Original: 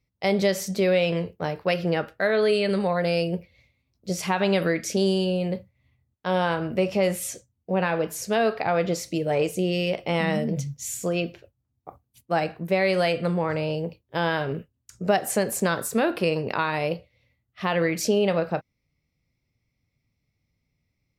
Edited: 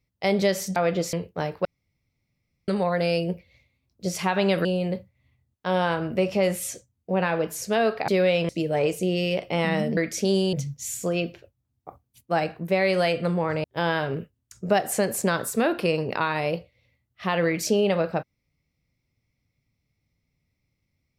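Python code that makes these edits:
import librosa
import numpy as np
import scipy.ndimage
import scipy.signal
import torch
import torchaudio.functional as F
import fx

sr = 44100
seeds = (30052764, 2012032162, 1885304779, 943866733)

y = fx.edit(x, sr, fx.swap(start_s=0.76, length_s=0.41, other_s=8.68, other_length_s=0.37),
    fx.room_tone_fill(start_s=1.69, length_s=1.03),
    fx.move(start_s=4.69, length_s=0.56, to_s=10.53),
    fx.cut(start_s=13.64, length_s=0.38), tone=tone)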